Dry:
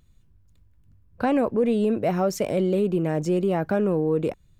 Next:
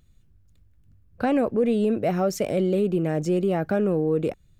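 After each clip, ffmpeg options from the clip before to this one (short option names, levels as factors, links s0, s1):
-af "equalizer=f=980:t=o:w=0.25:g=-7.5"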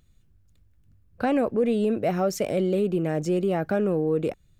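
-af "lowshelf=f=330:g=-2.5"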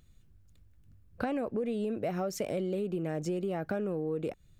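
-af "acompressor=threshold=0.0316:ratio=6"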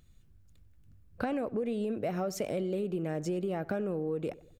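-filter_complex "[0:a]asplit=2[s0][s1];[s1]adelay=94,lowpass=f=2100:p=1,volume=0.112,asplit=2[s2][s3];[s3]adelay=94,lowpass=f=2100:p=1,volume=0.46,asplit=2[s4][s5];[s5]adelay=94,lowpass=f=2100:p=1,volume=0.46,asplit=2[s6][s7];[s7]adelay=94,lowpass=f=2100:p=1,volume=0.46[s8];[s0][s2][s4][s6][s8]amix=inputs=5:normalize=0"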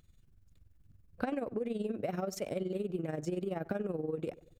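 -af "tremolo=f=21:d=0.71"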